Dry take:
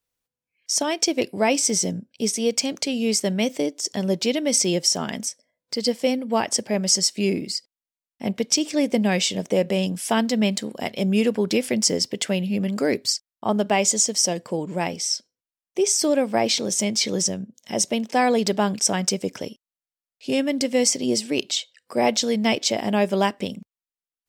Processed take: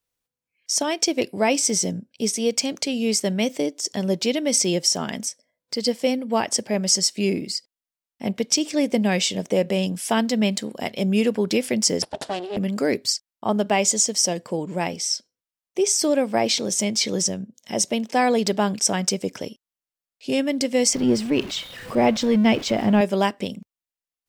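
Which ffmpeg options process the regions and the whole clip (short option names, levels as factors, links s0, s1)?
-filter_complex "[0:a]asettb=1/sr,asplit=3[s0][s1][s2];[s0]atrim=end=12.024[s3];[s1]atrim=start=12.02:end=12.57,asetpts=PTS-STARTPTS,afade=t=in:d=0.004:c=qsin,afade=t=out:st=0.546:d=0.004:c=qsin,aeval=exprs='abs(val(0))':c=same,highpass=160,equalizer=f=200:t=q:w=4:g=-4,equalizer=f=630:t=q:w=4:g=9,equalizer=f=1200:t=q:w=4:g=-5,equalizer=f=2300:t=q:w=4:g=-8,equalizer=f=6300:t=q:w=4:g=-7,lowpass=f=8300:w=0.5412,lowpass=f=8300:w=1.3066[s4];[s2]atrim=start=12.566[s5];[s3][s4]acrossfade=d=0.004:c1=hsin:c2=qsin[s6];[s6][s5]acrossfade=d=0.004:c1=qsin:c2=hsin,asettb=1/sr,asplit=3[s7][s8][s9];[s7]atrim=end=20.934[s10];[s8]atrim=start=20.93:end=23.01,asetpts=PTS-STARTPTS,afade=t=in:d=0.004:c=qsin,afade=t=out:st=2.076:d=0.004:c=qsin,aeval=exprs='val(0)+0.5*0.0299*sgn(val(0))':c=same,bass=f=250:g=7,treble=f=4000:g=-11[s11];[s9]atrim=start=23.006[s12];[s10][s11]acrossfade=d=0.004:c1=hsin:c2=qsin[s13];[s13][s12]acrossfade=d=0.004:c1=qsin:c2=hsin"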